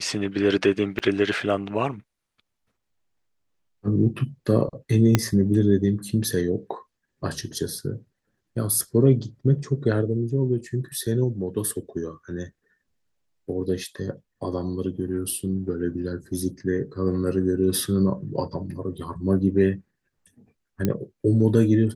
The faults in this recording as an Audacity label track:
0.990000	1.000000	gap 7.3 ms
5.150000	5.150000	pop -3 dBFS
20.850000	20.850000	pop -10 dBFS

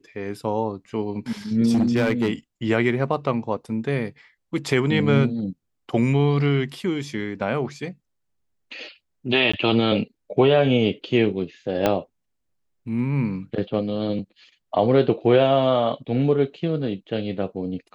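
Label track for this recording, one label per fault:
1.700000	2.300000	clipped -15 dBFS
9.520000	9.540000	gap 15 ms
11.860000	11.860000	pop -6 dBFS

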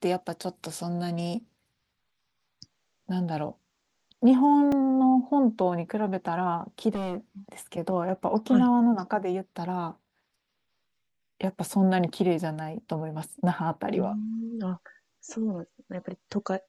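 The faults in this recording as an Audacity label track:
4.720000	4.720000	gap 3.3 ms
6.950000	7.170000	clipped -26 dBFS

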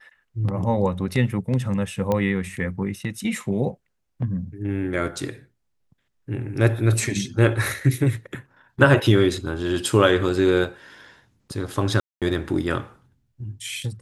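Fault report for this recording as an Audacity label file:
2.120000	2.120000	pop -11 dBFS
12.000000	12.220000	gap 0.217 s

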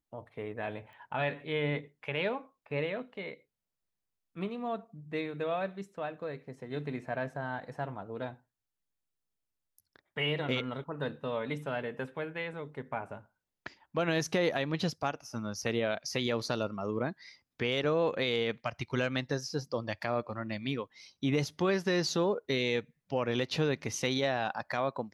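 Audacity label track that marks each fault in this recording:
0.930000	0.930000	pop -43 dBFS

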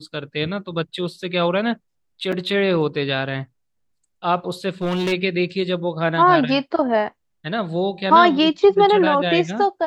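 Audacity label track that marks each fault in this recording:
2.320000	2.330000	gap 5.8 ms
4.820000	5.130000	clipped -18.5 dBFS

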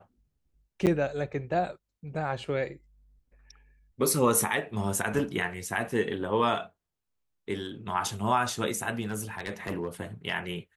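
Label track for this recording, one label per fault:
0.860000	0.870000	gap 8.3 ms
9.010000	9.880000	clipped -26.5 dBFS

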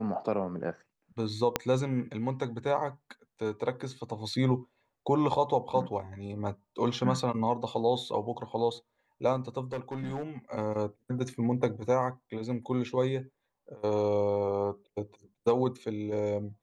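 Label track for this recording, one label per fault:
1.560000	1.560000	pop -9 dBFS
9.720000	10.230000	clipped -30 dBFS

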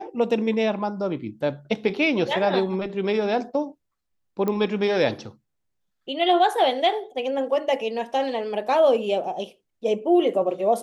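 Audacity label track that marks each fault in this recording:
4.480000	4.480000	pop -14 dBFS

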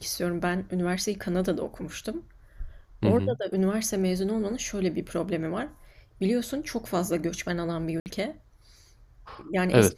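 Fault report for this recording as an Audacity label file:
8.000000	8.060000	gap 59 ms

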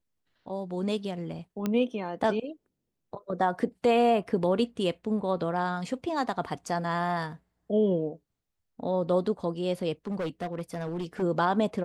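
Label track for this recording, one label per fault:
1.660000	1.660000	pop -16 dBFS
10.070000	11.230000	clipped -28 dBFS

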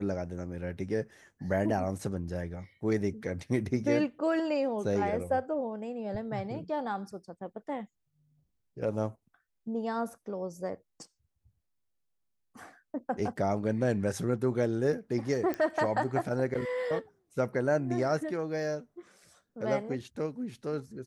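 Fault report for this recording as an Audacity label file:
15.540000	15.540000	pop -19 dBFS

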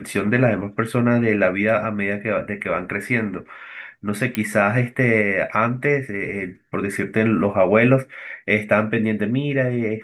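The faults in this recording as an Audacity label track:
4.350000	4.350000	pop -8 dBFS

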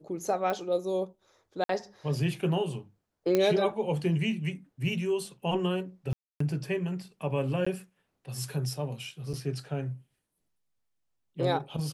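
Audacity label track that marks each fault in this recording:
0.500000	0.500000	pop -19 dBFS
1.640000	1.690000	gap 53 ms
3.350000	3.350000	pop -12 dBFS
6.130000	6.400000	gap 0.274 s
7.650000	7.670000	gap 15 ms
9.330000	9.340000	gap 6.4 ms

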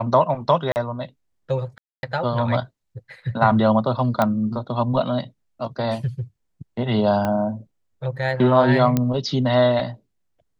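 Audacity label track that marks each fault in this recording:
0.720000	0.760000	gap 39 ms
1.780000	2.030000	gap 0.251 s
4.220000	4.220000	pop -7 dBFS
7.250000	7.250000	pop -11 dBFS
8.970000	8.970000	pop -7 dBFS

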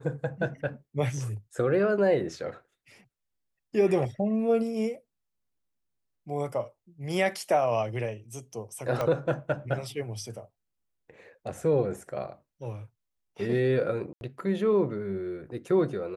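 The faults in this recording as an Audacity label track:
9.010000	9.010000	pop -16 dBFS
14.130000	14.210000	gap 81 ms

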